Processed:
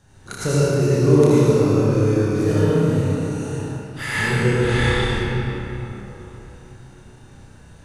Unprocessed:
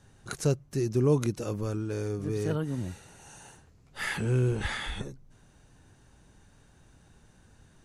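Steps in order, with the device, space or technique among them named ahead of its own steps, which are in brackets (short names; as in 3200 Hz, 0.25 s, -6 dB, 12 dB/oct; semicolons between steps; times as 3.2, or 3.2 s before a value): tunnel (flutter echo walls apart 5.2 m, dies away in 0.41 s; reverb RT60 3.7 s, pre-delay 72 ms, DRR -8.5 dB); gain +2 dB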